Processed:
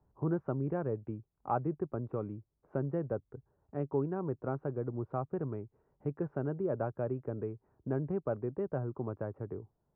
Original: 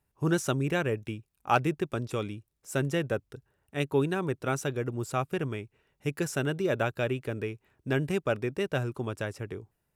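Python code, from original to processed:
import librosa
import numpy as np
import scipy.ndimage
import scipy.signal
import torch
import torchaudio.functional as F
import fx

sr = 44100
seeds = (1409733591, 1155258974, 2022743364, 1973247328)

y = scipy.signal.sosfilt(scipy.signal.butter(4, 1100.0, 'lowpass', fs=sr, output='sos'), x)
y = fx.band_squash(y, sr, depth_pct=40)
y = F.gain(torch.from_numpy(y), -5.0).numpy()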